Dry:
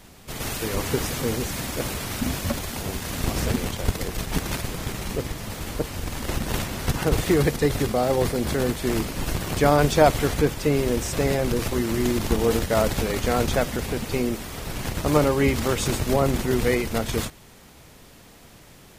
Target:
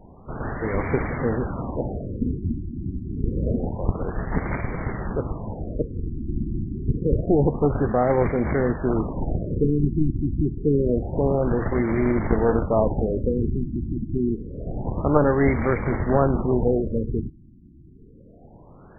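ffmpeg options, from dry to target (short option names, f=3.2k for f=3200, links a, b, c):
-af "aeval=exprs='clip(val(0),-1,0.0708)':c=same,afftfilt=real='re*lt(b*sr/1024,350*pow(2400/350,0.5+0.5*sin(2*PI*0.27*pts/sr)))':imag='im*lt(b*sr/1024,350*pow(2400/350,0.5+0.5*sin(2*PI*0.27*pts/sr)))':win_size=1024:overlap=0.75,volume=3dB"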